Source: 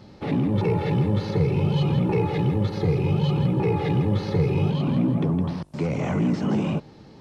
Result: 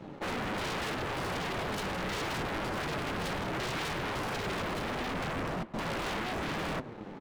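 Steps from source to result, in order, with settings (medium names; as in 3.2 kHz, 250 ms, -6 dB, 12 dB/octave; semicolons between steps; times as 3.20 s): local Wiener filter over 9 samples; high-pass 180 Hz 12 dB/octave; peaking EQ 2 kHz -3.5 dB 1.5 oct; waveshaping leveller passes 3; flange 0.76 Hz, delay 5.9 ms, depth 5.2 ms, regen +50%; wavefolder -29.5 dBFS; echo from a far wall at 170 m, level -17 dB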